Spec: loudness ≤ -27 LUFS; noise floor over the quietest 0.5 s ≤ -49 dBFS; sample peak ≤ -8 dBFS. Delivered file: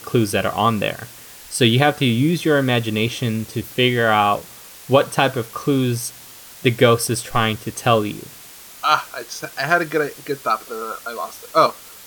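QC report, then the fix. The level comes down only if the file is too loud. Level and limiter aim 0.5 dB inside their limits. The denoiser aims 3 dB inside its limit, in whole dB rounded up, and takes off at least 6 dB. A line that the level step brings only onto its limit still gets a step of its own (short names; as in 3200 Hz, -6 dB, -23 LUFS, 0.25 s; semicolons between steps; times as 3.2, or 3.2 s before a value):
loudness -19.5 LUFS: fail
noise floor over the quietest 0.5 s -41 dBFS: fail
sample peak -2.0 dBFS: fail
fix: denoiser 6 dB, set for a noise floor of -41 dBFS; gain -8 dB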